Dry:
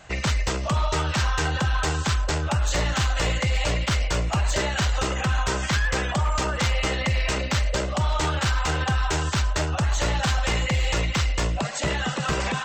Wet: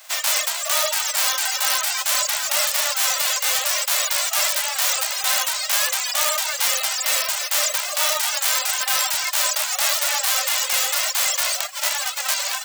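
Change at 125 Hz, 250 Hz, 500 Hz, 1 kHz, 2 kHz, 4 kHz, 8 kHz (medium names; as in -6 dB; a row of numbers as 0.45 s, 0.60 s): under -40 dB, under -40 dB, -3.0 dB, +0.5 dB, +3.0 dB, +8.0 dB, +13.5 dB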